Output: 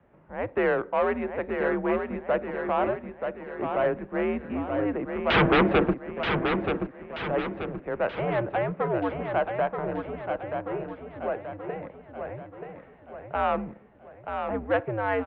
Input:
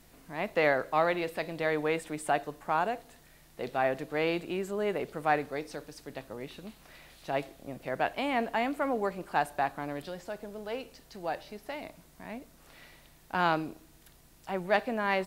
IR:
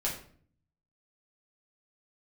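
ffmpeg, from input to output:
-filter_complex "[0:a]acrossover=split=210[s0][s1];[s1]adynamicsmooth=sensitivity=1:basefreq=1200[s2];[s0][s2]amix=inputs=2:normalize=0,asplit=2[s3][s4];[s4]highpass=f=720:p=1,volume=5.01,asoftclip=type=tanh:threshold=0.211[s5];[s3][s5]amix=inputs=2:normalize=0,lowpass=f=2000:p=1,volume=0.501,asettb=1/sr,asplit=3[s6][s7][s8];[s6]atrim=end=5.304[s9];[s7]atrim=start=5.3:end=5.94,asetpts=PTS-STARTPTS,afade=t=in:d=0.004:c=qsin,afade=t=out:st=0.636:d=0.004:c=qsin,aeval=exprs='0.178*sin(PI/2*10*val(0)/0.178)':c=same[s10];[s8]atrim=start=5.936[s11];[s9][s10]acrossfade=d=0.004:c1=hsin:c2=qsin[s12];[s12][s11]acrossfade=d=0.004:c1=qsin:c2=hsin,aecho=1:1:930|1860|2790|3720|4650|5580:0.501|0.241|0.115|0.0554|0.0266|0.0128,highpass=f=150:t=q:w=0.5412,highpass=f=150:t=q:w=1.307,lowpass=f=3300:t=q:w=0.5176,lowpass=f=3300:t=q:w=0.7071,lowpass=f=3300:t=q:w=1.932,afreqshift=-110"

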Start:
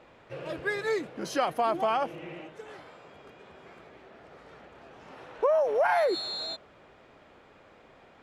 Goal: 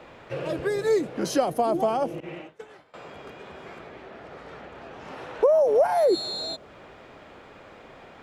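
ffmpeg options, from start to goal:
-filter_complex "[0:a]asettb=1/sr,asplit=3[s0][s1][s2];[s0]atrim=end=2.204[s3];[s1]atrim=start=2.2:end=2.94,asetpts=PTS-STARTPTS,afade=t=in:d=0.004:c=qsin,afade=t=out:st=0.736:d=0.004:c=qsin,agate=range=0.0224:threshold=0.0158:ratio=3:detection=peak[s4];[s2]atrim=start=2.936[s5];[s3][s4]acrossfade=d=0.004:c1=hsin:c2=qsin[s6];[s6][s5]acrossfade=d=0.004:c1=qsin:c2=hsin,asettb=1/sr,asplit=3[s7][s8][s9];[s7]atrim=end=3.784[s10];[s8]atrim=start=3.78:end=5.05,asetpts=PTS-STARTPTS,afade=t=in:d=0.004:c=qsin,afade=t=out:st=1.266:d=0.004:c=qsin,highshelf=f=6600:g=-5.5[s11];[s9]atrim=start=5.046[s12];[s10][s11]acrossfade=d=0.004:c1=hsin:c2=qsin[s13];[s13][s12]acrossfade=d=0.004:c1=qsin:c2=hsin,acrossover=split=110|680|5200[s14][s15][s16][s17];[s16]acompressor=threshold=0.00501:ratio=6[s18];[s14][s15][s18][s17]amix=inputs=4:normalize=0,volume=2.66"

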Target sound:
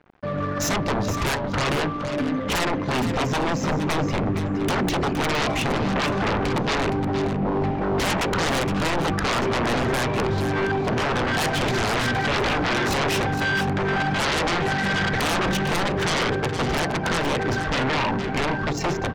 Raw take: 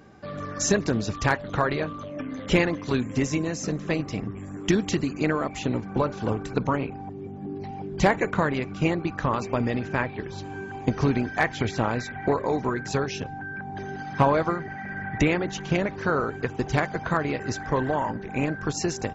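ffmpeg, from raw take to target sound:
-af "bandreject=f=60.17:t=h:w=4,bandreject=f=120.34:t=h:w=4,bandreject=f=180.51:t=h:w=4,bandreject=f=240.68:t=h:w=4,bandreject=f=300.85:t=h:w=4,bandreject=f=361.02:t=h:w=4,bandreject=f=421.19:t=h:w=4,bandreject=f=481.36:t=h:w=4,bandreject=f=541.53:t=h:w=4,bandreject=f=601.7:t=h:w=4,bandreject=f=661.87:t=h:w=4,bandreject=f=722.04:t=h:w=4,bandreject=f=782.21:t=h:w=4,bandreject=f=842.38:t=h:w=4,bandreject=f=902.55:t=h:w=4,bandreject=f=962.72:t=h:w=4,bandreject=f=1022.89:t=h:w=4,bandreject=f=1083.06:t=h:w=4,bandreject=f=1143.23:t=h:w=4,dynaudnorm=f=680:g=13:m=3.35,alimiter=limit=0.211:level=0:latency=1:release=138,aeval=exprs='sgn(val(0))*max(abs(val(0))-0.00447,0)':c=same,adynamicsmooth=sensitivity=2:basefreq=2300,aeval=exprs='0.211*sin(PI/2*5.01*val(0)/0.211)':c=same,aecho=1:1:466:0.335,volume=0.501"

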